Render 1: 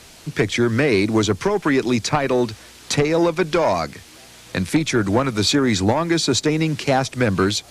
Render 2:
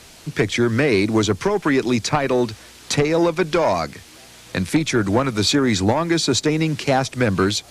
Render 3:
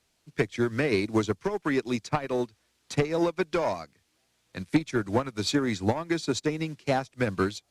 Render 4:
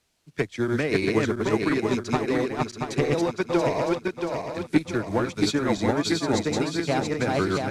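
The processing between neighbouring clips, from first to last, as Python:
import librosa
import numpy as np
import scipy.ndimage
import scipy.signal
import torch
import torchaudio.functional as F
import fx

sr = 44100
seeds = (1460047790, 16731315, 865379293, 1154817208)

y1 = x
y2 = fx.upward_expand(y1, sr, threshold_db=-29.0, expansion=2.5)
y2 = y2 * 10.0 ** (-3.5 / 20.0)
y3 = fx.reverse_delay_fb(y2, sr, ms=340, feedback_pct=64, wet_db=-1)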